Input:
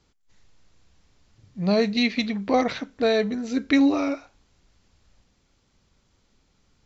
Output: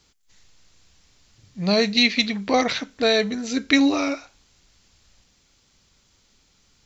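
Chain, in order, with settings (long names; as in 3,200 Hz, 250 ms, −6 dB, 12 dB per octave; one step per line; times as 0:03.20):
high-shelf EQ 2,000 Hz +11.5 dB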